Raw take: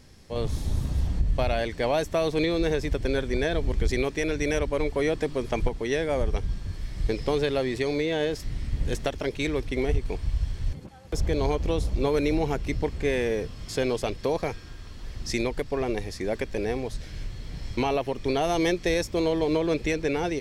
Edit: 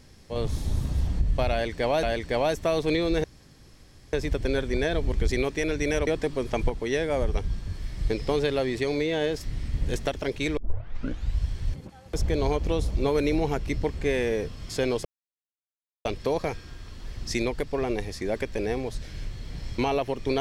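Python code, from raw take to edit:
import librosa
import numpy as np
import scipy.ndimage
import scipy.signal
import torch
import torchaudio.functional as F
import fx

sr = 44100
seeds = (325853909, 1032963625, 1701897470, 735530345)

y = fx.edit(x, sr, fx.repeat(start_s=1.52, length_s=0.51, count=2),
    fx.insert_room_tone(at_s=2.73, length_s=0.89),
    fx.cut(start_s=4.67, length_s=0.39),
    fx.tape_start(start_s=9.56, length_s=0.81),
    fx.insert_silence(at_s=14.04, length_s=1.0), tone=tone)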